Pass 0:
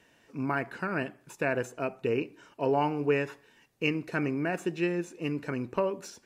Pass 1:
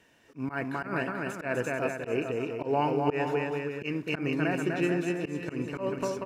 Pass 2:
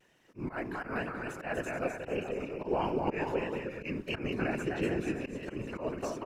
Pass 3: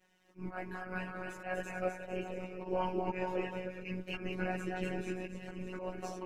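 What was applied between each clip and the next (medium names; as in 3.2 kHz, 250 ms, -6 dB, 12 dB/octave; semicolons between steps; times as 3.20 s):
bouncing-ball echo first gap 250 ms, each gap 0.75×, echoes 5; slow attack 108 ms
whisper effect; vibrato 1.5 Hz 52 cents; trim -4.5 dB
robot voice 184 Hz; chorus voices 6, 0.61 Hz, delay 16 ms, depth 1.7 ms; trim +1 dB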